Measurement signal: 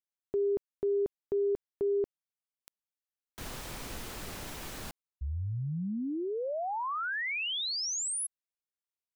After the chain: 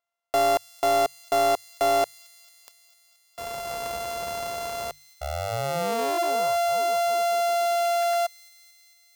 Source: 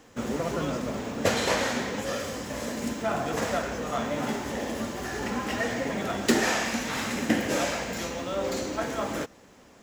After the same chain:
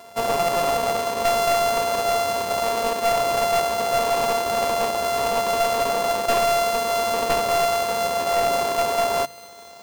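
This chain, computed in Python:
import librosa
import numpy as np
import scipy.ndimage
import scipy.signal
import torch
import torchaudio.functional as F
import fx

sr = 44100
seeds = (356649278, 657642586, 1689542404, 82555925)

p1 = np.r_[np.sort(x[:len(x) // 64 * 64].reshape(-1, 64), axis=1).ravel(), x[len(x) // 64 * 64:]]
p2 = scipy.signal.sosfilt(scipy.signal.butter(2, 53.0, 'highpass', fs=sr, output='sos'), p1)
p3 = fx.tilt_shelf(p2, sr, db=-4.5, hz=970.0)
p4 = fx.hum_notches(p3, sr, base_hz=50, count=3)
p5 = fx.rider(p4, sr, range_db=4, speed_s=0.5)
p6 = p4 + (p5 * librosa.db_to_amplitude(-0.5))
p7 = fx.band_shelf(p6, sr, hz=690.0, db=10.5, octaves=1.7)
p8 = np.clip(p7, -10.0 ** (-13.0 / 20.0), 10.0 ** (-13.0 / 20.0))
p9 = fx.echo_wet_highpass(p8, sr, ms=224, feedback_pct=74, hz=4200.0, wet_db=-15.5)
y = p9 * librosa.db_to_amplitude(-3.0)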